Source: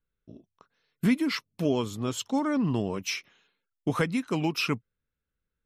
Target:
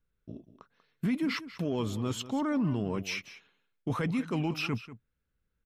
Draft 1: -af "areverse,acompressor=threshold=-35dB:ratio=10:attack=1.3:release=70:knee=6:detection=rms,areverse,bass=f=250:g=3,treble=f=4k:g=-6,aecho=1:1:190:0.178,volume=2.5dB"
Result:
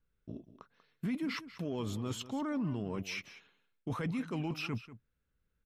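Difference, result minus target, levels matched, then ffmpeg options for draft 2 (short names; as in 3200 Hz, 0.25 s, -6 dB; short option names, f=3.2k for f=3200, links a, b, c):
compressor: peak gain reduction +6 dB
-af "areverse,acompressor=threshold=-28.5dB:ratio=10:attack=1.3:release=70:knee=6:detection=rms,areverse,bass=f=250:g=3,treble=f=4k:g=-6,aecho=1:1:190:0.178,volume=2.5dB"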